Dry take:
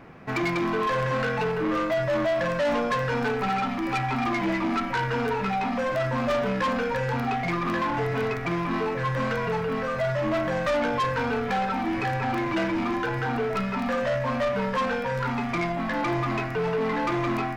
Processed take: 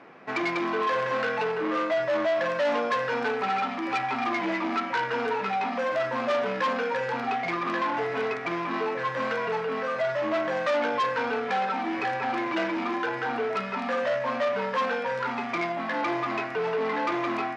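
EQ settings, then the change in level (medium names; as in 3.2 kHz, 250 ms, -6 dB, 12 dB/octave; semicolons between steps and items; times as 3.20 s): band-pass 320–5900 Hz; 0.0 dB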